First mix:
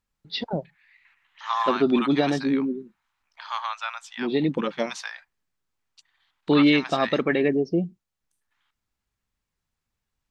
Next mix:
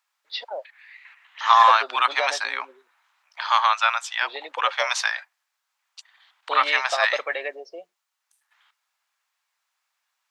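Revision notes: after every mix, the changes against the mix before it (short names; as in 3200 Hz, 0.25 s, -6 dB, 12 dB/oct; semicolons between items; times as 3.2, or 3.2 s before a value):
second voice +11.5 dB; master: add Chebyshev high-pass 560 Hz, order 4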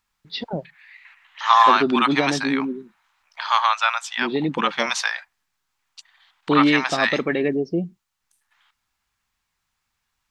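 master: remove Chebyshev high-pass 560 Hz, order 4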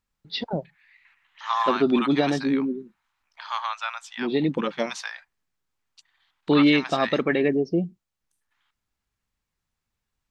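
second voice -10.5 dB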